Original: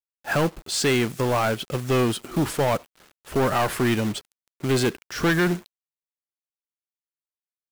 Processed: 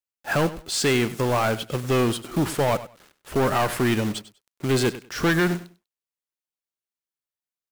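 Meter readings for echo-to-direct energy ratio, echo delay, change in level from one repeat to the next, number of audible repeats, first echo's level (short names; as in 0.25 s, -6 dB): -16.0 dB, 98 ms, -14.5 dB, 2, -16.0 dB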